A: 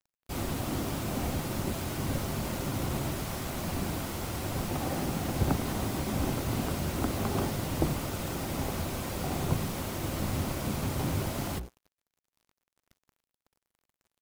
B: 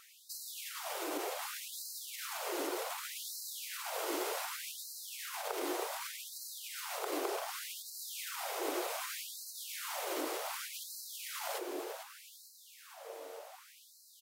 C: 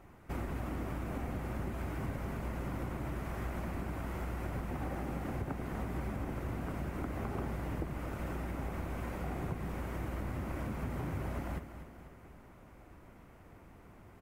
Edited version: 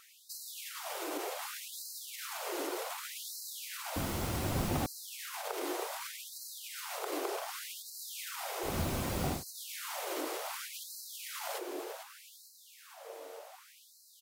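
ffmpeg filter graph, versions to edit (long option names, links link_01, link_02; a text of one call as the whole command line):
ffmpeg -i take0.wav -i take1.wav -filter_complex "[0:a]asplit=2[link_01][link_02];[1:a]asplit=3[link_03][link_04][link_05];[link_03]atrim=end=3.962[link_06];[link_01]atrim=start=3.958:end=4.862[link_07];[link_04]atrim=start=4.858:end=8.78[link_08];[link_02]atrim=start=8.62:end=9.44[link_09];[link_05]atrim=start=9.28[link_10];[link_06][link_07]acrossfade=duration=0.004:curve1=hsin:curve2=hsin[link_11];[link_11][link_08]acrossfade=duration=0.004:curve1=hsin:curve2=hsin[link_12];[link_12][link_09]acrossfade=duration=0.16:curve1=tri:curve2=tri[link_13];[link_13][link_10]acrossfade=duration=0.16:curve1=tri:curve2=tri" out.wav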